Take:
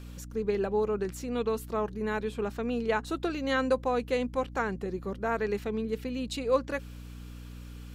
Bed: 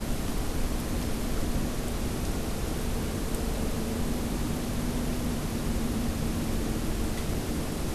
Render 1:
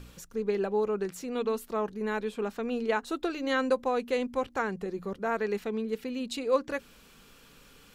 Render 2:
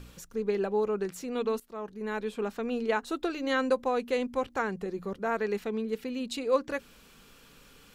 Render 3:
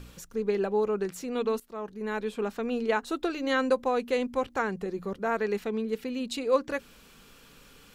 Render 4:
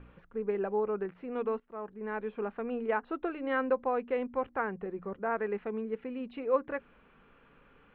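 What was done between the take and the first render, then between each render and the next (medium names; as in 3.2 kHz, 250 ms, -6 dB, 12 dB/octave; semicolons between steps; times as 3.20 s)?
de-hum 60 Hz, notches 5
1.60–2.32 s: fade in, from -15 dB
trim +1.5 dB
Bessel low-pass 1.5 kHz, order 8; bass shelf 490 Hz -7 dB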